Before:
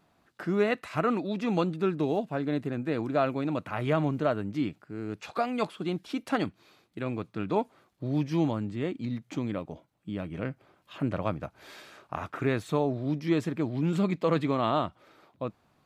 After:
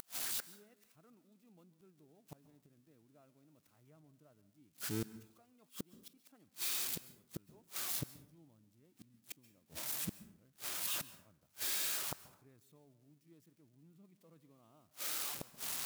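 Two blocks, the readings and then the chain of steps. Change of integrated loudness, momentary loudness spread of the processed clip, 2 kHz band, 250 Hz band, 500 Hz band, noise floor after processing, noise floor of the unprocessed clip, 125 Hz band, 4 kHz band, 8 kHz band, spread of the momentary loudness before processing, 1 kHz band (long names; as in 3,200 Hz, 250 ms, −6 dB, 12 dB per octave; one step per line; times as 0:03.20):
−9.5 dB, 23 LU, −12.0 dB, −24.0 dB, −27.5 dB, −74 dBFS, −68 dBFS, −22.0 dB, −1.5 dB, can't be measured, 12 LU, −22.5 dB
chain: spike at every zero crossing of −20.5 dBFS
low-shelf EQ 370 Hz +9.5 dB
upward compression, threshold −34 dBFS
gate with flip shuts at −20 dBFS, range −36 dB
dense smooth reverb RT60 0.66 s, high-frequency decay 0.6×, pre-delay 120 ms, DRR 16.5 dB
level −7.5 dB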